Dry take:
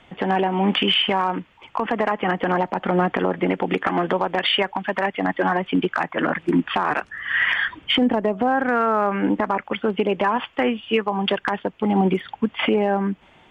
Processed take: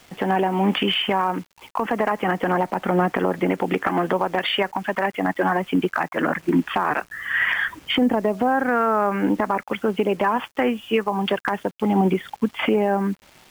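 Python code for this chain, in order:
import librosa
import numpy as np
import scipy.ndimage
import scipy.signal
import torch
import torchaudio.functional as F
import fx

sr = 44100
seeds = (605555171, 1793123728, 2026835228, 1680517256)

y = fx.quant_dither(x, sr, seeds[0], bits=8, dither='none')
y = fx.dynamic_eq(y, sr, hz=3500.0, q=1.7, threshold_db=-40.0, ratio=4.0, max_db=-5)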